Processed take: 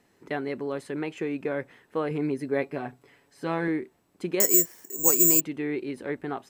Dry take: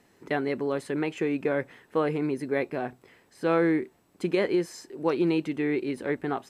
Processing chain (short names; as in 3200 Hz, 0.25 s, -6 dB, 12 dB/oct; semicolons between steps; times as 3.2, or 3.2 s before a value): 2.1–3.68 comb 7.1 ms, depth 60%; 4.4–5.41 careless resampling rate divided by 6×, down filtered, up zero stuff; gain -3 dB